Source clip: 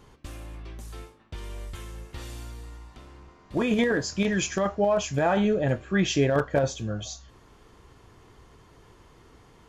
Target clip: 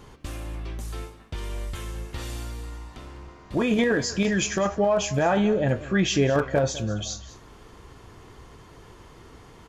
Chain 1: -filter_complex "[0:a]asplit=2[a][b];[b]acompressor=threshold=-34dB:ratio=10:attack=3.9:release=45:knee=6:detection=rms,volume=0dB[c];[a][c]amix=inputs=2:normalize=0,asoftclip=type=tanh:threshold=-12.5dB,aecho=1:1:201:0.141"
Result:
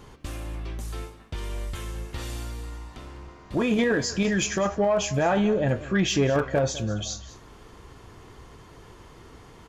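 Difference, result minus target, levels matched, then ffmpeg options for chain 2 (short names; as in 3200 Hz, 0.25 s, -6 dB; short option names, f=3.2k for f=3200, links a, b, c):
soft clip: distortion +15 dB
-filter_complex "[0:a]asplit=2[a][b];[b]acompressor=threshold=-34dB:ratio=10:attack=3.9:release=45:knee=6:detection=rms,volume=0dB[c];[a][c]amix=inputs=2:normalize=0,asoftclip=type=tanh:threshold=-4dB,aecho=1:1:201:0.141"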